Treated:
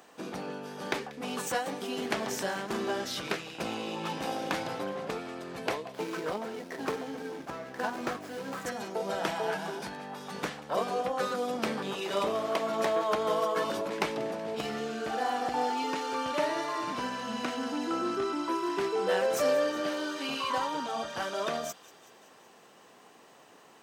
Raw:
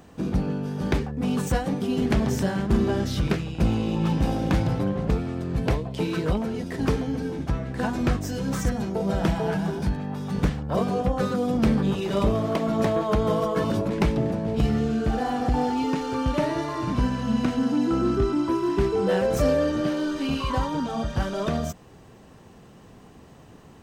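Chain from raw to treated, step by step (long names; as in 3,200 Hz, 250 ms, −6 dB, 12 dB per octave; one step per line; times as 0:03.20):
0:05.92–0:08.66: running median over 15 samples
Bessel high-pass filter 630 Hz, order 2
delay with a high-pass on its return 188 ms, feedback 63%, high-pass 2,000 Hz, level −17 dB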